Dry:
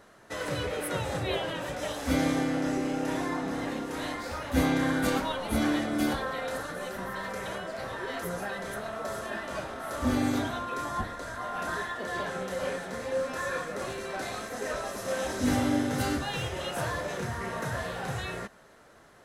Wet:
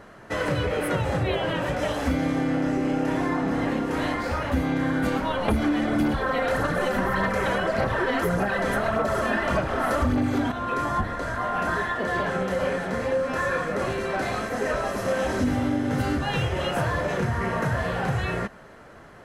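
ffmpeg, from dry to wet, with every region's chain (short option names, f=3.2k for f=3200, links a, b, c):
-filter_complex "[0:a]asettb=1/sr,asplit=3[a][b][c];[a]atrim=end=5.484[d];[b]atrim=start=5.48:end=10.52,asetpts=PTS-STARTPTS,afade=t=in:d=0.004:c=qsin,afade=t=out:st=5.036:d=0.004:c=qsin,aphaser=in_gain=1:out_gain=1:delay=4.1:decay=0.43:speed=1.7:type=sinusoidal,aeval=exprs='0.251*sin(PI/2*1.58*val(0)/0.251)':c=same[e];[c]atrim=start=10.516[f];[d][e]acrossfade=d=0.004:c1=hsin:c2=qsin[g];[g][f]acrossfade=d=0.004:c1=qsin:c2=hsin,bass=f=250:g=4,treble=f=4k:g=-9,bandreject=f=3.7k:w=14,acompressor=threshold=-29dB:ratio=10,volume=8.5dB"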